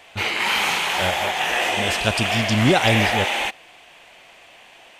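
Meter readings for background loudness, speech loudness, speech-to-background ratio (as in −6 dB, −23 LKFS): −21.0 LKFS, −23.0 LKFS, −2.0 dB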